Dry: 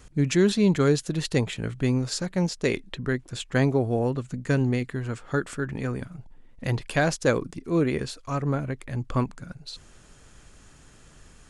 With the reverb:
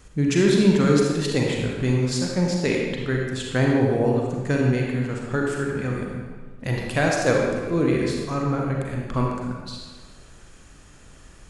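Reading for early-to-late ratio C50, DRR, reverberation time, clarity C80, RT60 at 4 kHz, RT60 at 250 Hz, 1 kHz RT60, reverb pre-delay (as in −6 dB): 0.0 dB, −1.5 dB, 1.5 s, 2.0 dB, 1.1 s, 1.4 s, 1.5 s, 34 ms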